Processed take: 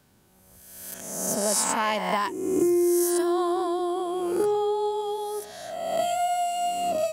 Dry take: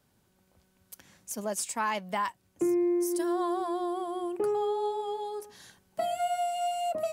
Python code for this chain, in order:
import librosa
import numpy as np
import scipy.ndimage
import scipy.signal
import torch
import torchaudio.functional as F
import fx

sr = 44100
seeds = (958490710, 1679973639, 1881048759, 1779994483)

y = fx.spec_swells(x, sr, rise_s=1.2)
y = fx.dynamic_eq(y, sr, hz=1400.0, q=0.76, threshold_db=-40.0, ratio=4.0, max_db=-4)
y = F.gain(torch.from_numpy(y), 5.0).numpy()